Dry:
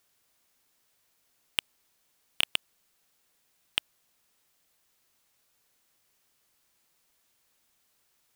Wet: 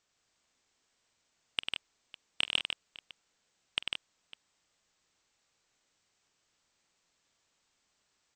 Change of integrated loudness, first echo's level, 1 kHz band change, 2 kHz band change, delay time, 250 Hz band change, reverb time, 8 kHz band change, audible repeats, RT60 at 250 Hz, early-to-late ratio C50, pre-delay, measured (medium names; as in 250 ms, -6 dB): -3.5 dB, -17.5 dB, -1.5 dB, -1.5 dB, 46 ms, -1.0 dB, no reverb, -10.5 dB, 4, no reverb, no reverb, no reverb